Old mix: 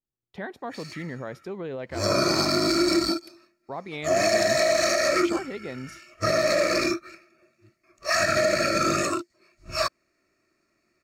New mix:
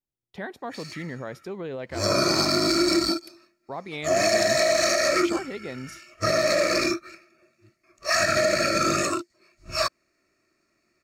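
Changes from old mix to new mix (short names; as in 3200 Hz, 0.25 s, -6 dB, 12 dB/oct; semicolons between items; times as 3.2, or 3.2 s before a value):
background: add high shelf 8400 Hz -5 dB; master: add high shelf 4300 Hz +5.5 dB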